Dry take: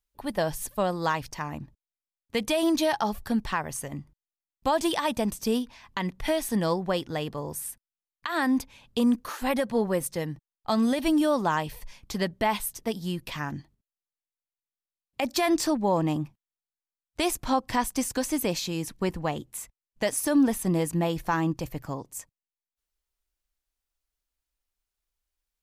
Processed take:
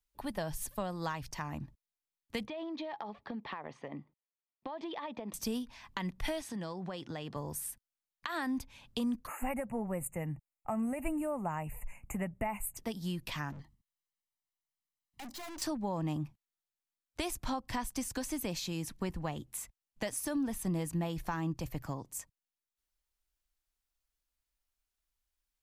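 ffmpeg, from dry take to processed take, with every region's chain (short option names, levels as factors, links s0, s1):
-filter_complex "[0:a]asettb=1/sr,asplit=3[s0][s1][s2];[s0]atrim=end=2.474[s3];[s1]atrim=start=2.47:end=5.34,asetpts=PTS-STARTPTS,afade=t=in:d=0.004:c=qsin,afade=t=out:st=2.866:d=0.004:c=qsin,highpass=260,equalizer=f=460:t=q:w=4:g=4,equalizer=f=1500:t=q:w=4:g=-9,equalizer=f=2800:t=q:w=4:g=-6,lowpass=f=3200:w=0.5412,lowpass=f=3200:w=1.3066,acompressor=threshold=0.0251:ratio=10:attack=3.2:release=140:knee=1:detection=peak[s4];[s2]atrim=start=5.336[s5];[s3][s4]acrossfade=d=0.004:c1=hsin:c2=qsin[s6];[s6][s5]acrossfade=d=0.004:c1=qsin:c2=hsin,asettb=1/sr,asplit=3[s7][s8][s9];[s7]atrim=end=6.414[s10];[s8]atrim=start=6.41:end=7.36,asetpts=PTS-STARTPTS,afade=t=in:d=0.004:c=qsin,afade=t=out:st=0.946:d=0.004:c=qsin,highpass=110,lowpass=7000,acompressor=threshold=0.0224:ratio=4:attack=3.2:release=140:knee=1:detection=peak[s11];[s9]atrim=start=7.356[s12];[s10][s11]acrossfade=d=0.004:c1=hsin:c2=qsin[s13];[s13][s12]acrossfade=d=0.004:c1=qsin:c2=hsin,asettb=1/sr,asplit=3[s14][s15][s16];[s14]atrim=end=9.274[s17];[s15]atrim=start=9.27:end=12.77,asetpts=PTS-STARTPTS,afade=t=in:d=0.004:c=qsin,afade=t=out:st=3.496:d=0.004:c=qsin,asuperstop=centerf=4400:order=20:qfactor=1.1,equalizer=f=1500:t=o:w=0.22:g=-10.5,aecho=1:1:1.4:0.32,atrim=end_sample=154350[s18];[s16]atrim=start=12.766[s19];[s17][s18]acrossfade=d=0.004:c1=hsin:c2=qsin[s20];[s20][s19]acrossfade=d=0.004:c1=qsin:c2=hsin,asettb=1/sr,asplit=3[s21][s22][s23];[s21]atrim=end=13.524[s24];[s22]atrim=start=13.52:end=15.62,asetpts=PTS-STARTPTS,afade=t=in:d=0.004:c=qsin,afade=t=out:st=2.096:d=0.004:c=qsin,aecho=1:1:1:0.82,atrim=end_sample=92610,aeval=exprs='(tanh(126*val(0)+0.45)-tanh(0.45))/126':c=same[s25];[s23]atrim=start=15.616[s26];[s24][s25]acrossfade=d=0.004:c1=hsin:c2=qsin[s27];[s27][s26]acrossfade=d=0.004:c1=qsin:c2=hsin,equalizer=f=450:t=o:w=0.77:g=-3.5,acrossover=split=130[s28][s29];[s29]acompressor=threshold=0.0158:ratio=2.5[s30];[s28][s30]amix=inputs=2:normalize=0,volume=0.841"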